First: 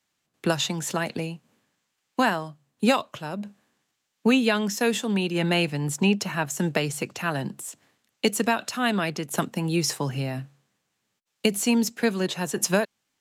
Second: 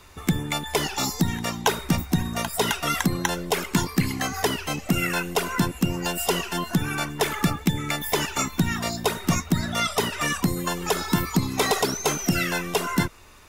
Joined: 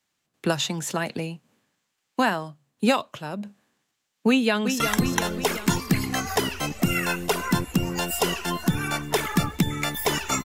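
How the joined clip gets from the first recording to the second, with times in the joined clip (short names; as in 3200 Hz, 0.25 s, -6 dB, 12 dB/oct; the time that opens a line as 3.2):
first
4.29–4.8 echo throw 0.36 s, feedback 60%, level -7 dB
4.8 switch to second from 2.87 s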